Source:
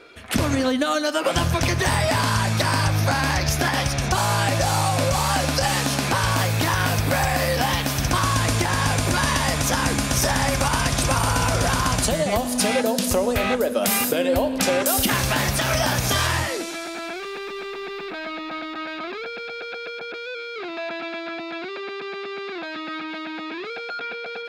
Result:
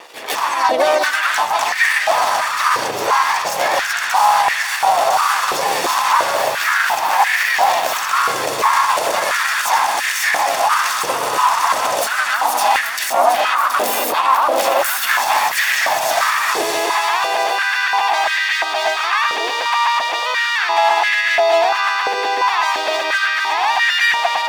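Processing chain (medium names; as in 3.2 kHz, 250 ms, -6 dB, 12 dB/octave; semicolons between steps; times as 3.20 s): comb filter that takes the minimum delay 1.1 ms; dynamic bell 9.3 kHz, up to -3 dB, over -38 dBFS, Q 1.1; compression 4:1, threshold -28 dBFS, peak gain reduction 9.5 dB; crossover distortion -53.5 dBFS; harmony voices +4 st -3 dB; echo whose repeats swap between lows and highs 361 ms, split 1.3 kHz, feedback 62%, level -6.5 dB; loudness maximiser +20.5 dB; step-sequenced high-pass 2.9 Hz 470–1800 Hz; trim -8.5 dB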